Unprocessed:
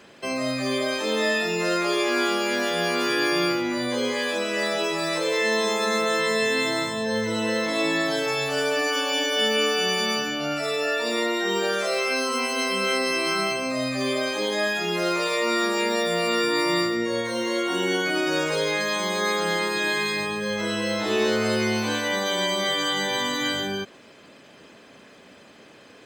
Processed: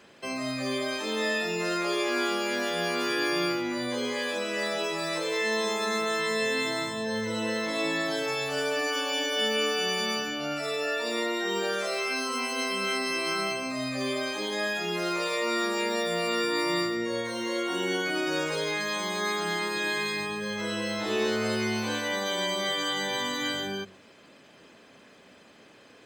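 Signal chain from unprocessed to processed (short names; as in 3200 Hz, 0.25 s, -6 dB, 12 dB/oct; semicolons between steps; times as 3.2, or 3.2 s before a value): de-hum 47.59 Hz, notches 14; gain -4.5 dB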